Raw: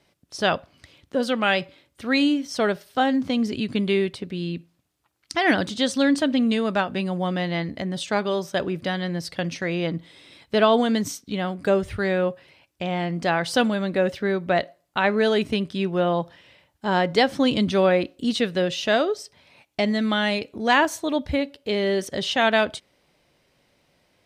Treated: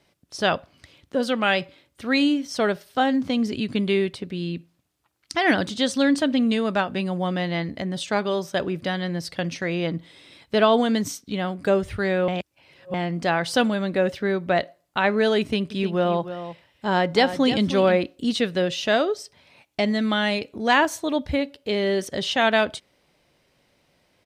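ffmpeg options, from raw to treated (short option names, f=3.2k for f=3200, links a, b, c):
-filter_complex "[0:a]asplit=3[a][b][c];[a]afade=t=out:st=15.7:d=0.02[d];[b]aecho=1:1:307:0.266,afade=t=in:st=15.7:d=0.02,afade=t=out:st=17.97:d=0.02[e];[c]afade=t=in:st=17.97:d=0.02[f];[d][e][f]amix=inputs=3:normalize=0,asplit=3[g][h][i];[g]atrim=end=12.282[j];[h]atrim=start=12.278:end=12.942,asetpts=PTS-STARTPTS,areverse[k];[i]atrim=start=12.938[l];[j][k]acrossfade=d=0.004:c1=hsin:c2=hsin[m];[m][l]acrossfade=d=0.004:c1=hsin:c2=hsin"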